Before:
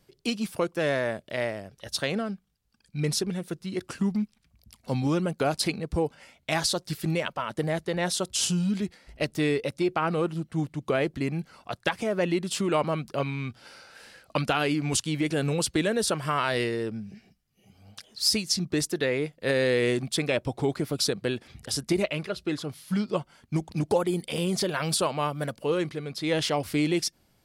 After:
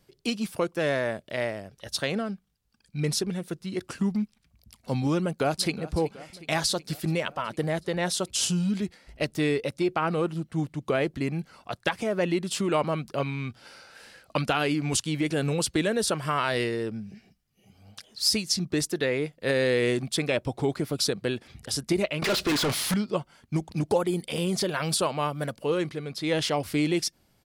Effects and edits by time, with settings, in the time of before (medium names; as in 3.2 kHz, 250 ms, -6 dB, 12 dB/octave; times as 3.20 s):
5.21–5.93 s: echo throw 370 ms, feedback 70%, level -17 dB
22.22–22.94 s: overdrive pedal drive 36 dB, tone 6 kHz, clips at -18 dBFS